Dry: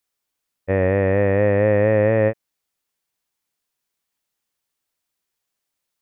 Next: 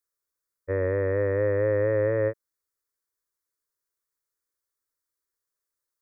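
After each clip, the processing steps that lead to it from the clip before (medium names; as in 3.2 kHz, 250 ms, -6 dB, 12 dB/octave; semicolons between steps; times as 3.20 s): static phaser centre 750 Hz, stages 6; trim -5 dB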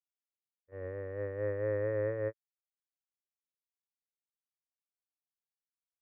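gate -23 dBFS, range -27 dB; trim -7.5 dB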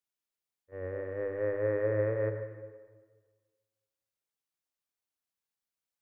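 hum notches 50/100 Hz; on a send at -7 dB: reverberation RT60 1.5 s, pre-delay 75 ms; on the sum: trim +3 dB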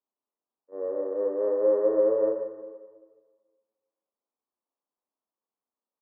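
elliptic band-pass 220–1100 Hz, stop band 50 dB; doubling 34 ms -4 dB; trim +6 dB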